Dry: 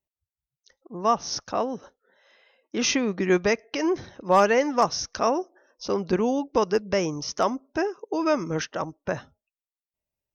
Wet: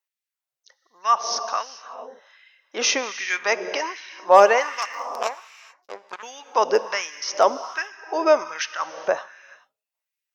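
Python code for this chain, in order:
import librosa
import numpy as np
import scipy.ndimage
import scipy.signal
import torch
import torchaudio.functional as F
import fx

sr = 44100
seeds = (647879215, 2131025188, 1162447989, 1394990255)

y = fx.power_curve(x, sr, exponent=3.0, at=(4.85, 6.23))
y = fx.rev_gated(y, sr, seeds[0], gate_ms=460, shape='flat', drr_db=11.0)
y = fx.filter_lfo_highpass(y, sr, shape='sine', hz=1.3, low_hz=510.0, high_hz=2100.0, q=1.6)
y = y * 10.0 ** (3.5 / 20.0)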